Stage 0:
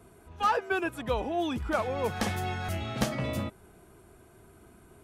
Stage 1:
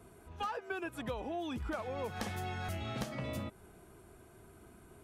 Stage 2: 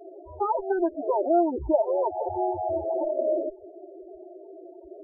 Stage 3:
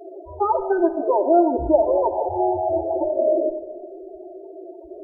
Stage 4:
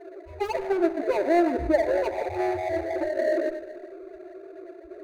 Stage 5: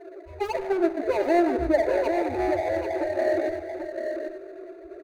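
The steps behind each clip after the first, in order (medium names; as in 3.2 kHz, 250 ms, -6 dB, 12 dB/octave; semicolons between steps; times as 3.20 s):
compression 10:1, threshold -33 dBFS, peak gain reduction 12 dB; trim -2 dB
comb filter that takes the minimum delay 3.2 ms; high-order bell 560 Hz +14 dB; loudest bins only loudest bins 8; trim +6.5 dB
reverberation RT60 1.2 s, pre-delay 45 ms, DRR 11 dB; trim +5.5 dB
median filter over 41 samples; trim -3 dB
delay 787 ms -6.5 dB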